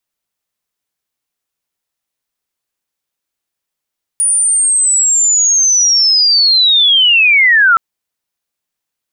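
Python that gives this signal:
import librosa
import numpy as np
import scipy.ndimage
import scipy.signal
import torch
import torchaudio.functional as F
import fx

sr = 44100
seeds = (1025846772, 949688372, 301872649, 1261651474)

y = fx.chirp(sr, length_s=3.57, from_hz=9600.0, to_hz=1300.0, law='linear', from_db=-9.0, to_db=-5.0)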